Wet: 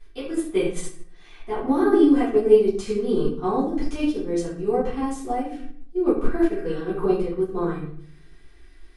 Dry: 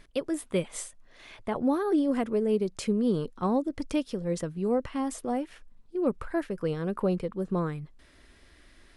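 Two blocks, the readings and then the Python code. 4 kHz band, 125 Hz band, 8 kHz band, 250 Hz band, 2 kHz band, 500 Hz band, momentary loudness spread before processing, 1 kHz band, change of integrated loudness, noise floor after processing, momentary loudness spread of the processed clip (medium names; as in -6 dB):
+3.0 dB, -0.5 dB, +0.5 dB, +6.0 dB, +5.0 dB, +8.0 dB, 10 LU, +6.0 dB, +6.5 dB, -46 dBFS, 14 LU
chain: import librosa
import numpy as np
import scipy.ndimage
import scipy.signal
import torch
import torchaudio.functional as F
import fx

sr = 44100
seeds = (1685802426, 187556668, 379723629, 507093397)

y = fx.notch(x, sr, hz=570.0, q=12.0)
y = fx.spec_repair(y, sr, seeds[0], start_s=6.51, length_s=0.26, low_hz=1000.0, high_hz=2500.0, source='both')
y = y + 0.44 * np.pad(y, (int(2.6 * sr / 1000.0), 0))[:len(y)]
y = fx.room_shoebox(y, sr, seeds[1], volume_m3=120.0, walls='mixed', distance_m=3.1)
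y = fx.upward_expand(y, sr, threshold_db=-25.0, expansion=1.5)
y = y * 10.0 ** (-3.0 / 20.0)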